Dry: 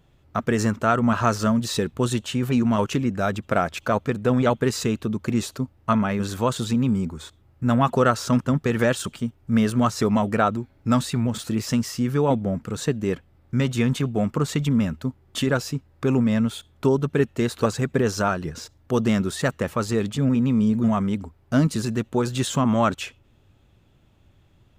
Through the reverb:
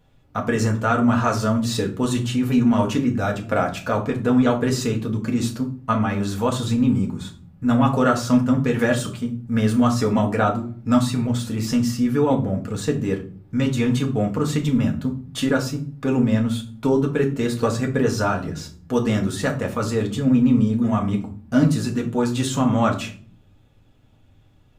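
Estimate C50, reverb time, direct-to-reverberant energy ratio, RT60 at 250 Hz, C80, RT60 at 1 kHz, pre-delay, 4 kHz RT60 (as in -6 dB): 12.0 dB, 0.45 s, 0.0 dB, 0.90 s, 17.0 dB, 0.40 s, 4 ms, 0.30 s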